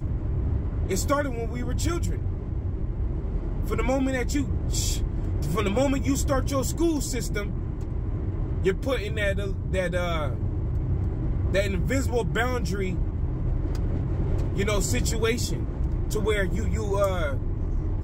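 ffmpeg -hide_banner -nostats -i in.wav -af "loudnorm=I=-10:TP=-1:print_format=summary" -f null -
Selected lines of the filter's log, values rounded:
Input Integrated:    -27.2 LUFS
Input True Peak:     -10.6 dBTP
Input LRA:             1.7 LU
Input Threshold:     -37.2 LUFS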